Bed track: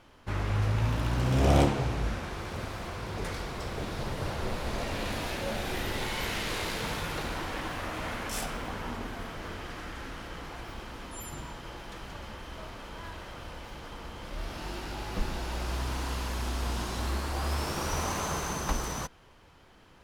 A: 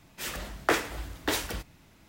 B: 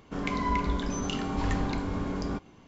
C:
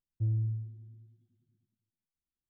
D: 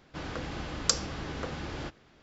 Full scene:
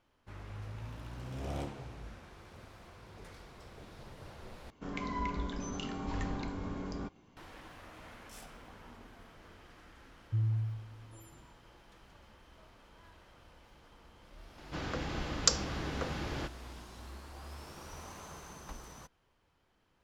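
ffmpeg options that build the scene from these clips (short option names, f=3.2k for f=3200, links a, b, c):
-filter_complex "[0:a]volume=-16.5dB[a];[3:a]acrossover=split=390[b][c];[c]adelay=790[d];[b][d]amix=inputs=2:normalize=0[e];[4:a]acompressor=mode=upward:threshold=-54dB:ratio=4:attack=18:release=24:knee=2.83:detection=peak[f];[a]asplit=2[g][h];[g]atrim=end=4.704[i];[2:a]atrim=end=2.67,asetpts=PTS-STARTPTS,volume=-8dB[j];[h]atrim=start=7.366[k];[e]atrim=end=2.49,asetpts=PTS-STARTPTS,volume=-1dB,afade=t=in:d=0.004:c=hsin,afade=t=out:st=2.486:d=0.004:c=hsin,adelay=10120[l];[f]atrim=end=2.22,asetpts=PTS-STARTPTS,volume=-0.5dB,afade=t=in:d=0.004:c=hsin,afade=t=out:st=2.216:d=0.004:c=hsin,adelay=14580[m];[i][j]acrossfade=d=0.004:c1=hsin:c2=hsin[n];[n][k]acrossfade=d=0.004:c1=hsin:c2=hsin[o];[o][l][m]amix=inputs=3:normalize=0"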